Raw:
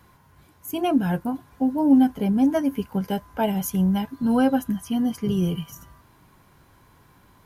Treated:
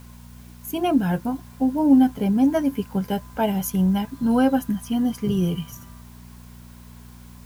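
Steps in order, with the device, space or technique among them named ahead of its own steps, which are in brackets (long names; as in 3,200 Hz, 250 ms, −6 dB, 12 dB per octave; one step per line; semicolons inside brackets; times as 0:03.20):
video cassette with head-switching buzz (hum with harmonics 60 Hz, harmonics 4, −45 dBFS −3 dB per octave; white noise bed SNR 32 dB)
level +1 dB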